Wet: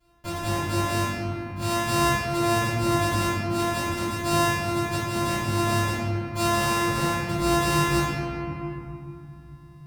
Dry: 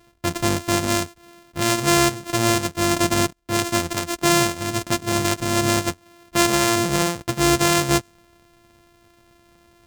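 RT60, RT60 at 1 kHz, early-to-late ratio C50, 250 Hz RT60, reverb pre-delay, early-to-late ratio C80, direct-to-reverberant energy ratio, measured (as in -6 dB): 2.7 s, 2.8 s, -4.0 dB, 3.9 s, 3 ms, -1.5 dB, -15.0 dB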